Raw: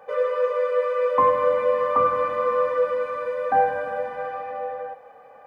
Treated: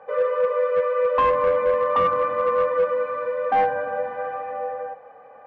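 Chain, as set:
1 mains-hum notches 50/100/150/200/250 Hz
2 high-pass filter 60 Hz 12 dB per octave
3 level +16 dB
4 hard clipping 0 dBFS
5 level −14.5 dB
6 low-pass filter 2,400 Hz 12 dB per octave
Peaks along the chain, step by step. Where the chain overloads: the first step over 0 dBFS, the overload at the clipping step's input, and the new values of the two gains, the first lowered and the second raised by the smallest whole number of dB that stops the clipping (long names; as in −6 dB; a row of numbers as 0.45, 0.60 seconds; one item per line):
−8.5, −8.5, +7.5, 0.0, −14.5, −14.0 dBFS
step 3, 7.5 dB
step 3 +8 dB, step 5 −6.5 dB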